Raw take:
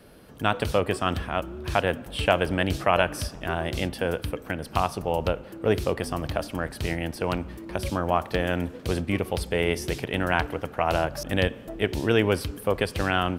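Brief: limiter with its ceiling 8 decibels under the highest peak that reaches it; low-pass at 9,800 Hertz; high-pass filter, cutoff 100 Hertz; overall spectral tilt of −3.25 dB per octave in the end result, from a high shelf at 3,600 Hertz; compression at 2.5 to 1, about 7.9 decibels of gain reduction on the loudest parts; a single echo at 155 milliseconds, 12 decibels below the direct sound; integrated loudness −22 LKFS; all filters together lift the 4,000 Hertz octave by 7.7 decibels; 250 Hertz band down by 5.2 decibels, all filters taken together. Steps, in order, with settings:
high-pass filter 100 Hz
low-pass filter 9,800 Hz
parametric band 250 Hz −7.5 dB
high-shelf EQ 3,600 Hz +5.5 dB
parametric band 4,000 Hz +7.5 dB
downward compressor 2.5 to 1, threshold −27 dBFS
brickwall limiter −17.5 dBFS
single-tap delay 155 ms −12 dB
level +10.5 dB

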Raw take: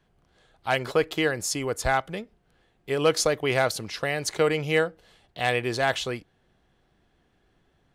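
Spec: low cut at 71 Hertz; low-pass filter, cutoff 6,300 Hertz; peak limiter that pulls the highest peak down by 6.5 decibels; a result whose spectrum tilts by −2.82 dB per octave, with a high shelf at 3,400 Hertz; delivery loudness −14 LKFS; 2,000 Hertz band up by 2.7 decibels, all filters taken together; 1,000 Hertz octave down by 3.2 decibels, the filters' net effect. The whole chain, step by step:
high-pass filter 71 Hz
low-pass filter 6,300 Hz
parametric band 1,000 Hz −6.5 dB
parametric band 2,000 Hz +3 dB
high-shelf EQ 3,400 Hz +8 dB
level +13.5 dB
brickwall limiter −1 dBFS

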